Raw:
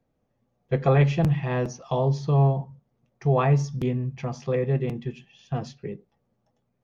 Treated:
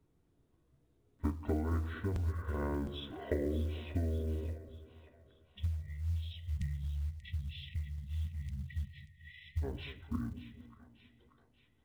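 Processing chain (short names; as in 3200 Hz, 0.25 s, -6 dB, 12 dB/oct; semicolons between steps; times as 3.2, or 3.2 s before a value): compressor 10:1, threshold -32 dBFS, peak gain reduction 17.5 dB; spectral delete 3.13–5.56, 350–3200 Hz; speed mistake 78 rpm record played at 45 rpm; dynamic EQ 140 Hz, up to -6 dB, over -51 dBFS, Q 1.5; split-band echo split 630 Hz, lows 0.226 s, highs 0.585 s, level -13 dB; short-mantissa float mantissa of 4-bit; gain +1.5 dB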